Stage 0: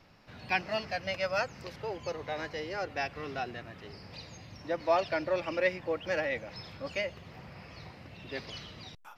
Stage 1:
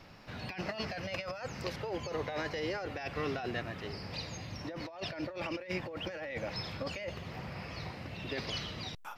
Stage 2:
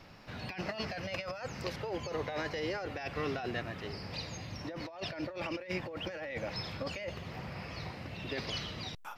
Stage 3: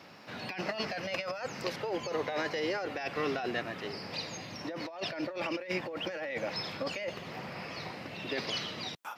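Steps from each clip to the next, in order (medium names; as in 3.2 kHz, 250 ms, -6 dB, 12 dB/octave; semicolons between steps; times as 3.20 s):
compressor with a negative ratio -39 dBFS, ratio -1; trim +1 dB
no audible change
high-pass 200 Hz 12 dB/octave; trim +3.5 dB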